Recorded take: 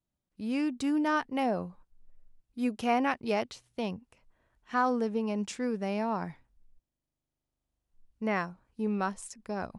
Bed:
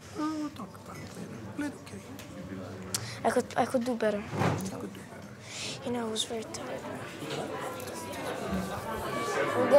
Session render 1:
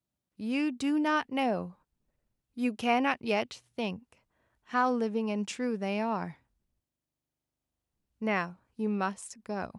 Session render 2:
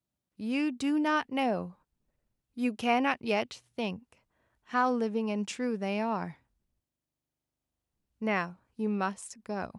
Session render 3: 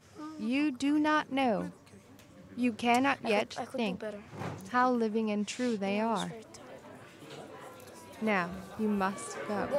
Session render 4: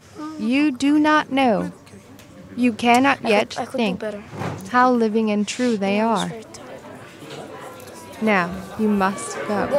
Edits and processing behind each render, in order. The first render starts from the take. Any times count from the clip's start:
high-pass filter 68 Hz 12 dB per octave; dynamic equaliser 2,700 Hz, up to +6 dB, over −50 dBFS, Q 2.1
no processing that can be heard
mix in bed −11 dB
level +11.5 dB

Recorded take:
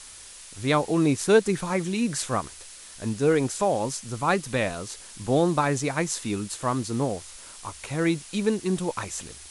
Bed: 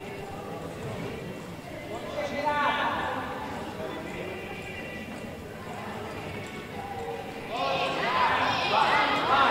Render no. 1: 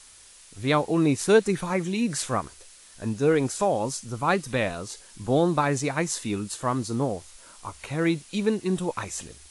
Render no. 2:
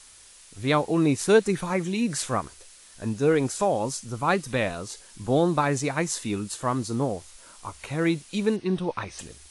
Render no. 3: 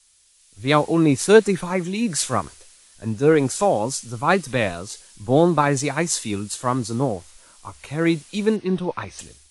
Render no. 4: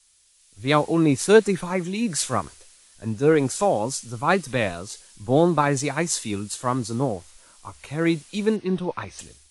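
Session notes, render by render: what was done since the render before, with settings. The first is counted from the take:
noise reduction from a noise print 6 dB
0:08.56–0:09.19: Savitzky-Golay smoothing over 15 samples
automatic gain control gain up to 4.5 dB; multiband upward and downward expander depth 40%
level −2 dB

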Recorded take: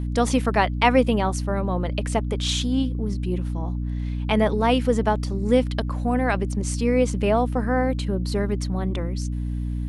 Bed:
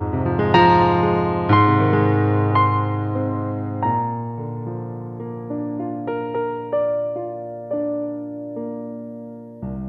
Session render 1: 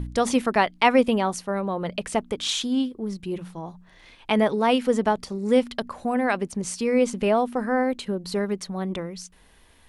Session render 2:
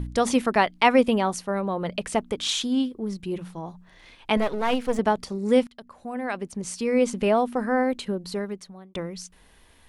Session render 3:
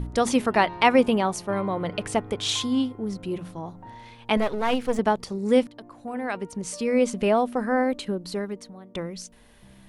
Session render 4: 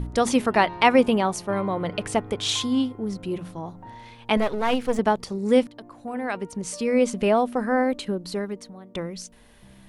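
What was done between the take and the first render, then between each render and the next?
hum removal 60 Hz, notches 5
0:04.37–0:04.99: gain on one half-wave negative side −12 dB; 0:05.67–0:07.11: fade in, from −20.5 dB; 0:08.07–0:08.95: fade out
mix in bed −24 dB
level +1 dB

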